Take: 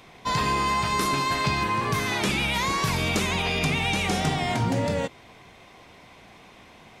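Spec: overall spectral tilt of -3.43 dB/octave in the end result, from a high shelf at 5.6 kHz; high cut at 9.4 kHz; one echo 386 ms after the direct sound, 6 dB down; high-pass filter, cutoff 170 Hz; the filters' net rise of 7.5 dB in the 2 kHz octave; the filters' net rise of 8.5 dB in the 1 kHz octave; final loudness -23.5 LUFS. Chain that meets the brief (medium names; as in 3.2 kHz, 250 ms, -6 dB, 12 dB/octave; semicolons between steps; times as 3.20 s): high-pass 170 Hz; low-pass 9.4 kHz; peaking EQ 1 kHz +7.5 dB; peaking EQ 2 kHz +8 dB; treble shelf 5.6 kHz -5 dB; delay 386 ms -6 dB; trim -5.5 dB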